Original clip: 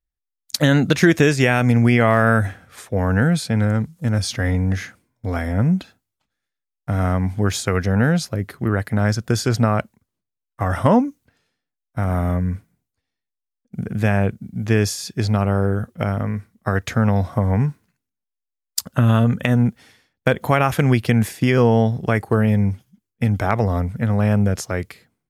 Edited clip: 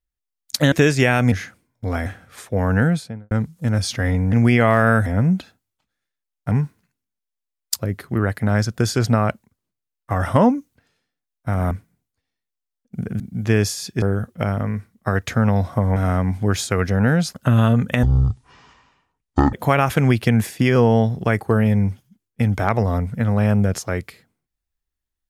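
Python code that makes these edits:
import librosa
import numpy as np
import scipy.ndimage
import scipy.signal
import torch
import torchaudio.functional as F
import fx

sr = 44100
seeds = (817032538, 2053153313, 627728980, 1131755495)

y = fx.studio_fade_out(x, sr, start_s=3.2, length_s=0.51)
y = fx.edit(y, sr, fx.cut(start_s=0.72, length_s=0.41),
    fx.swap(start_s=1.73, length_s=0.73, other_s=4.73, other_length_s=0.74),
    fx.swap(start_s=6.92, length_s=1.37, other_s=17.56, other_length_s=1.28),
    fx.cut(start_s=12.21, length_s=0.3),
    fx.cut(start_s=14.0, length_s=0.41),
    fx.cut(start_s=15.23, length_s=0.39),
    fx.speed_span(start_s=19.54, length_s=0.81, speed=0.54), tone=tone)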